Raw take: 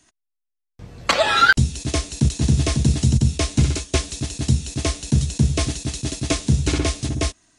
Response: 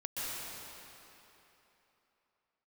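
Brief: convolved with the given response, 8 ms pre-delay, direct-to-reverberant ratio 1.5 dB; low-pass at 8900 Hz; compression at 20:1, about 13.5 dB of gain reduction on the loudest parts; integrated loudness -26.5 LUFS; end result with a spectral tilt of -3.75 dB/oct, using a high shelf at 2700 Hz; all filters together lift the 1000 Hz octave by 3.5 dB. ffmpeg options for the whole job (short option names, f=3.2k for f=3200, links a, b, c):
-filter_complex "[0:a]lowpass=8.9k,equalizer=f=1k:t=o:g=4,highshelf=f=2.7k:g=5.5,acompressor=threshold=-19dB:ratio=20,asplit=2[a][b];[1:a]atrim=start_sample=2205,adelay=8[c];[b][c]afir=irnorm=-1:irlink=0,volume=-5.5dB[d];[a][d]amix=inputs=2:normalize=0,volume=-3.5dB"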